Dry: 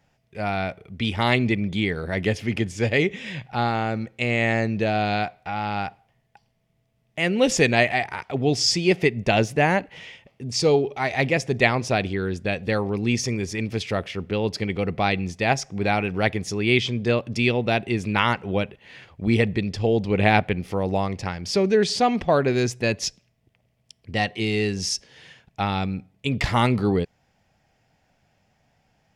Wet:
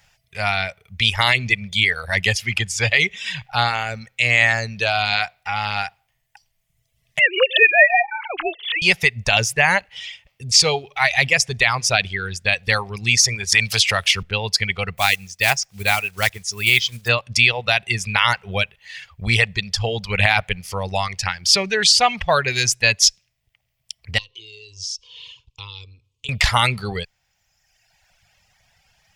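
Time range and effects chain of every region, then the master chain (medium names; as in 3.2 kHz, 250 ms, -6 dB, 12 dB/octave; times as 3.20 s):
7.19–8.82 s: formants replaced by sine waves + brick-wall FIR high-pass 310 Hz + swell ahead of each attack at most 130 dB/s
13.52–14.23 s: treble shelf 2.5 kHz +10 dB + three bands compressed up and down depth 70%
14.97–17.09 s: block-companded coder 5-bit + upward expansion, over -30 dBFS
24.18–26.29 s: FFT filter 120 Hz 0 dB, 180 Hz -23 dB, 300 Hz +3 dB, 490 Hz +2 dB, 710 Hz -30 dB, 1 kHz +2 dB, 1.6 kHz -30 dB, 2.9 kHz +1 dB, 6.9 kHz -4 dB, 13 kHz -22 dB + compression 3:1, threshold -44 dBFS
whole clip: reverb removal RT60 1.3 s; amplifier tone stack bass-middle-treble 10-0-10; loudness maximiser +17 dB; trim -1 dB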